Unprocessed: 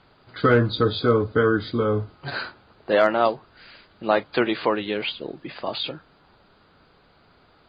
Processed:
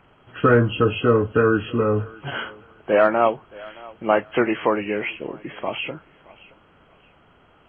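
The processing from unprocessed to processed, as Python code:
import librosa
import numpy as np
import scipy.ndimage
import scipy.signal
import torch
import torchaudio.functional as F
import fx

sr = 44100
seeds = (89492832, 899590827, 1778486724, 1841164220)

y = fx.freq_compress(x, sr, knee_hz=1500.0, ratio=1.5)
y = fx.echo_thinned(y, sr, ms=622, feedback_pct=32, hz=420.0, wet_db=-20.5)
y = y * 10.0 ** (2.0 / 20.0)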